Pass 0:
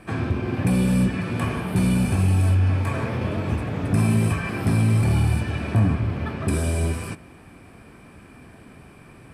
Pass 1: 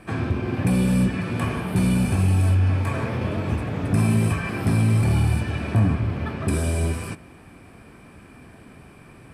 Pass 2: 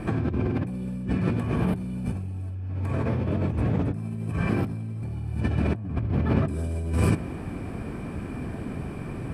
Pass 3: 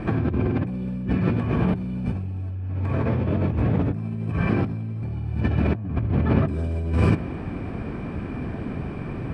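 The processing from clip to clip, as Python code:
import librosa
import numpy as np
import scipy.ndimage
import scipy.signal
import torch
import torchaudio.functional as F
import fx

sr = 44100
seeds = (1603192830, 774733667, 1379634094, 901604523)

y1 = x
y2 = fx.high_shelf(y1, sr, hz=11000.0, db=-3.5)
y2 = fx.over_compress(y2, sr, threshold_db=-32.0, ratio=-1.0)
y2 = fx.tilt_shelf(y2, sr, db=5.5, hz=780.0)
y3 = scipy.signal.sosfilt(scipy.signal.butter(2, 4100.0, 'lowpass', fs=sr, output='sos'), y2)
y3 = y3 * 10.0 ** (3.0 / 20.0)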